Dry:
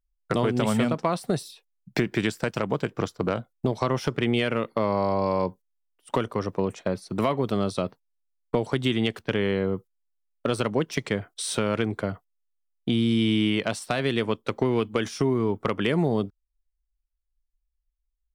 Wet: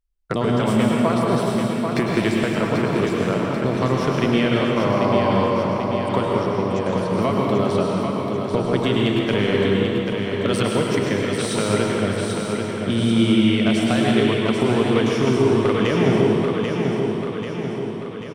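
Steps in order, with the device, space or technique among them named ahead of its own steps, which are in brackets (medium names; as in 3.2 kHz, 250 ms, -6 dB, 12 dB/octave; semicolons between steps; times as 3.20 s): 9.27–10.77 s: treble shelf 3.9 kHz +8.5 dB; feedback delay 789 ms, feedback 58%, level -5.5 dB; swimming-pool hall (reverberation RT60 2.3 s, pre-delay 96 ms, DRR -1.5 dB; treble shelf 5.8 kHz -4 dB); trim +1.5 dB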